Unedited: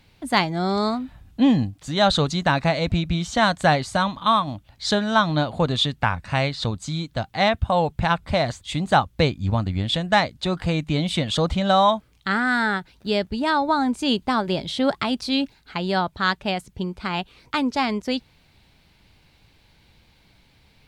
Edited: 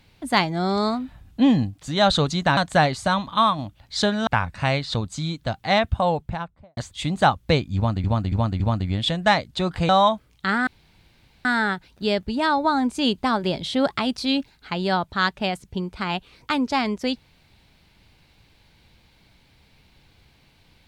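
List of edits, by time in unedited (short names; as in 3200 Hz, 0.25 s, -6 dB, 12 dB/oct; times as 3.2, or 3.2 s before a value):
2.57–3.46 cut
5.16–5.97 cut
7.6–8.47 studio fade out
9.46–9.74 loop, 4 plays
10.75–11.71 cut
12.49 insert room tone 0.78 s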